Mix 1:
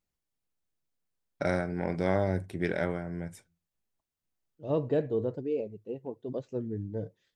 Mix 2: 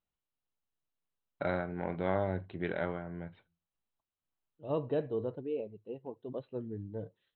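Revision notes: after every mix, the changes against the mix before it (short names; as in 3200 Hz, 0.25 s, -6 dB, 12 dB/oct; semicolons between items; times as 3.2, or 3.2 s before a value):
master: add rippled Chebyshev low-pass 4100 Hz, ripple 6 dB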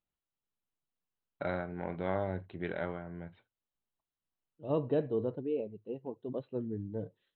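second voice: add bell 230 Hz +4.5 dB 1.9 oct; reverb: off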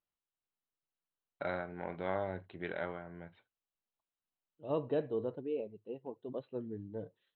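master: add low shelf 330 Hz -8 dB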